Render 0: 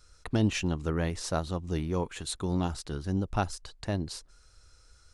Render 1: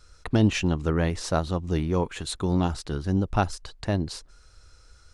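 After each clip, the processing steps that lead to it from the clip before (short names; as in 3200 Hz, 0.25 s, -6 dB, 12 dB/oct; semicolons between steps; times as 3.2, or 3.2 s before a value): high shelf 6600 Hz -7 dB; gain +5.5 dB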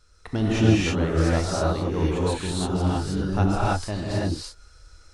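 non-linear reverb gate 0.35 s rising, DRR -7.5 dB; gain -5.5 dB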